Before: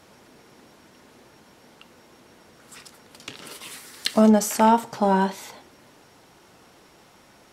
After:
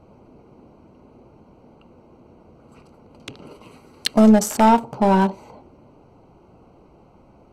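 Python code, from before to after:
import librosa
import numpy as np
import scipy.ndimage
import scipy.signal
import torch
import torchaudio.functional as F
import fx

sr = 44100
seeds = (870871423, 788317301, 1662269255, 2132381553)

p1 = fx.wiener(x, sr, points=25)
p2 = np.clip(p1, -10.0 ** (-17.5 / 20.0), 10.0 ** (-17.5 / 20.0))
p3 = p1 + (p2 * 10.0 ** (-4.0 / 20.0))
y = fx.low_shelf(p3, sr, hz=85.0, db=11.0)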